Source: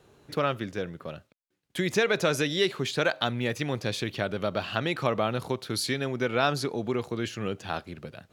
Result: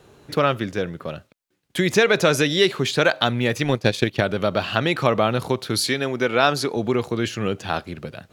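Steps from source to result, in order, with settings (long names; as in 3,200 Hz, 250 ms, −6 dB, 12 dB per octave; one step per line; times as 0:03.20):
0:03.64–0:04.21: transient designer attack +7 dB, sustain −11 dB
0:05.88–0:06.77: low-shelf EQ 120 Hz −12 dB
level +7.5 dB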